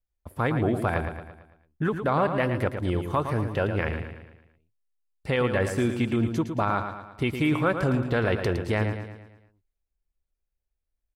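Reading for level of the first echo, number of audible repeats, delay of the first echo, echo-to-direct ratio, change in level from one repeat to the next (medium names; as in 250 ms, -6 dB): -8.0 dB, 5, 112 ms, -7.0 dB, -6.0 dB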